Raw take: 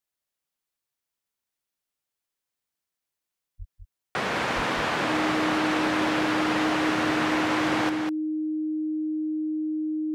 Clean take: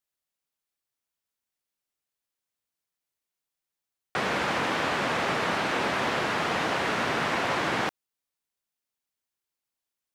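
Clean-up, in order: clip repair -17 dBFS; band-stop 310 Hz, Q 30; de-plosive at 3.58/4.55 s; inverse comb 200 ms -6.5 dB

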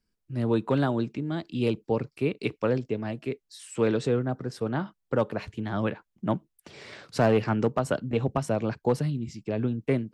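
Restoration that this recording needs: clip repair -14 dBFS

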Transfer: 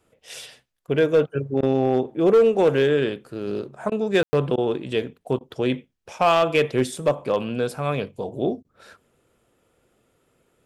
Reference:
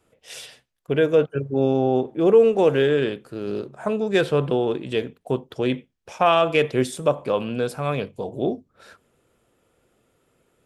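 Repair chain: clip repair -11 dBFS; room tone fill 4.23–4.33 s; interpolate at 1.61/3.90/4.56/5.39/8.63 s, 16 ms

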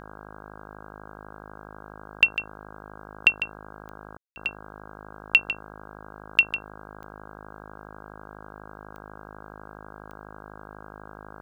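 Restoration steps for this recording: de-click; de-hum 52.1 Hz, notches 31; room tone fill 4.17–4.36 s

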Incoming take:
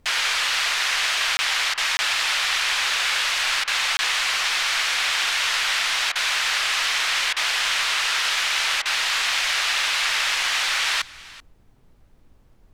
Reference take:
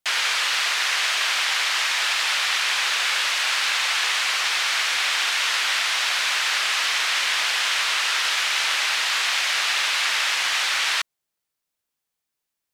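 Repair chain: interpolate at 1.37/1.97/3.97 s, 20 ms; interpolate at 1.74/3.64/6.12/7.33/8.82 s, 34 ms; expander -40 dBFS, range -21 dB; inverse comb 385 ms -20 dB

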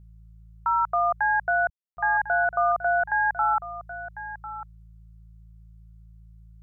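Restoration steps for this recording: de-hum 55 Hz, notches 3; room tone fill 1.70–1.97 s; noise print and reduce 22 dB; inverse comb 1049 ms -13.5 dB

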